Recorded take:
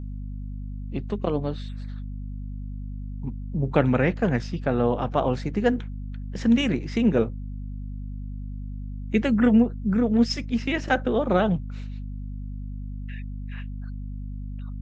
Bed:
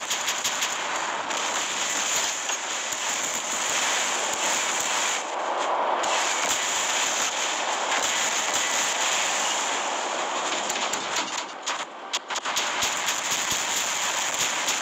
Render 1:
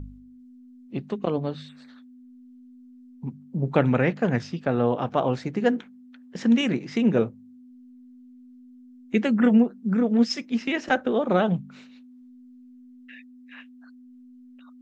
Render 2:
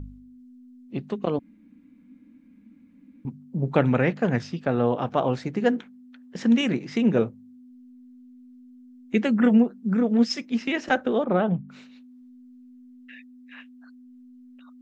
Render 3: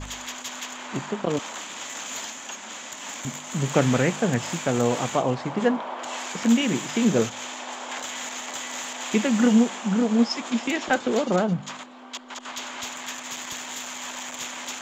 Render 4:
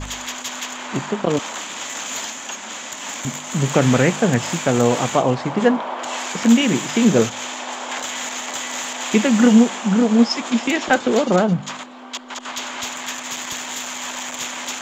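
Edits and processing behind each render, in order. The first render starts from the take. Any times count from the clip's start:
de-hum 50 Hz, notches 4
1.39–3.25 s: room tone; 11.24–11.69 s: distance through air 410 m
add bed -9 dB
trim +6 dB; peak limiter -2 dBFS, peak gain reduction 3 dB

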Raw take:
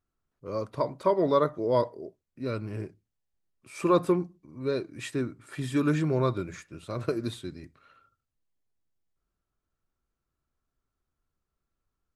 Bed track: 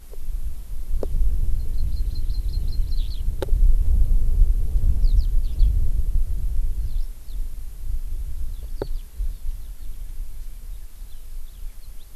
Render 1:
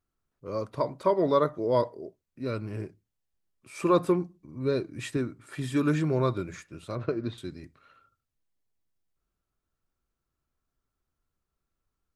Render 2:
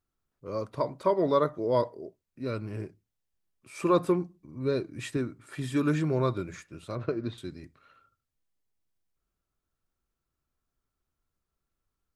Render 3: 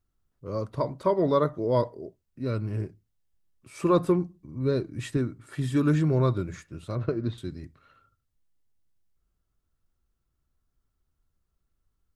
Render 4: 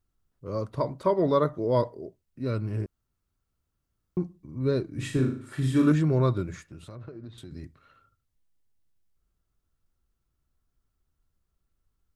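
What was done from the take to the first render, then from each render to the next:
4.40–5.17 s: bass shelf 230 Hz +6.5 dB; 6.95–7.38 s: distance through air 220 m
trim -1 dB
bass shelf 170 Hz +10.5 dB; band-stop 2.4 kHz, Q 19
2.86–4.17 s: room tone; 4.88–5.92 s: flutter echo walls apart 6.5 m, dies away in 0.48 s; 6.55–7.51 s: compression, threshold -39 dBFS

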